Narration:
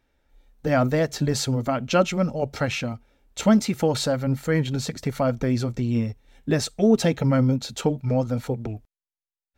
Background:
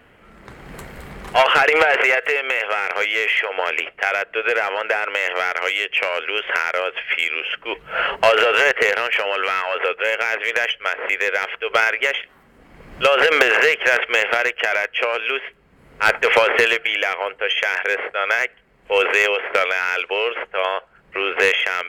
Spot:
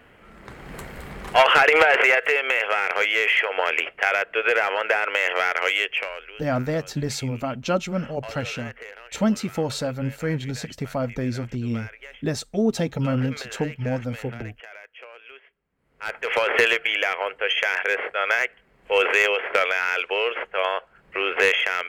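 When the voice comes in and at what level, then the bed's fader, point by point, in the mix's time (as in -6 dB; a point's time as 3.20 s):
5.75 s, -3.5 dB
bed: 5.84 s -1 dB
6.45 s -23 dB
15.74 s -23 dB
16.59 s -2.5 dB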